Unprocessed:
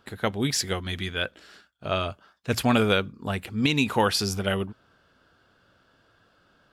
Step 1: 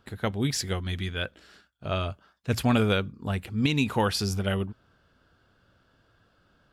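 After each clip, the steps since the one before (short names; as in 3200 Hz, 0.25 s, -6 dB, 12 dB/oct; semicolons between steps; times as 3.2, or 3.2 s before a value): low shelf 160 Hz +9.5 dB; gain -4 dB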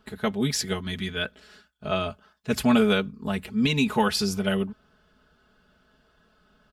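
comb 4.7 ms, depth 88%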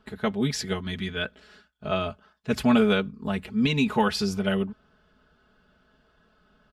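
high shelf 7000 Hz -11 dB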